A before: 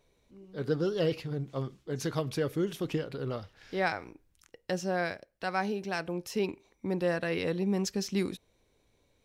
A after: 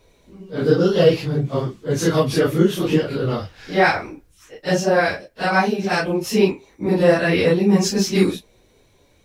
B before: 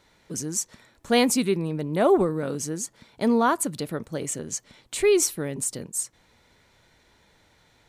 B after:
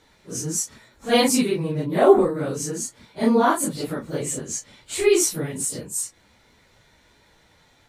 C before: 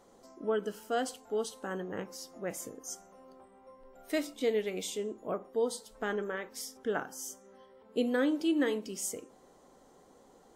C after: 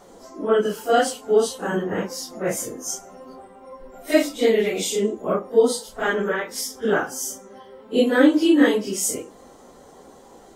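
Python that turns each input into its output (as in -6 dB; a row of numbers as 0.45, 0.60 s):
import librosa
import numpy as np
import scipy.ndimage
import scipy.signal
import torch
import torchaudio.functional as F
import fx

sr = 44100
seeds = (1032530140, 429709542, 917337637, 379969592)

y = fx.phase_scramble(x, sr, seeds[0], window_ms=100)
y = y * 10.0 ** (-2 / 20.0) / np.max(np.abs(y))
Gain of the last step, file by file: +13.5, +3.0, +13.0 dB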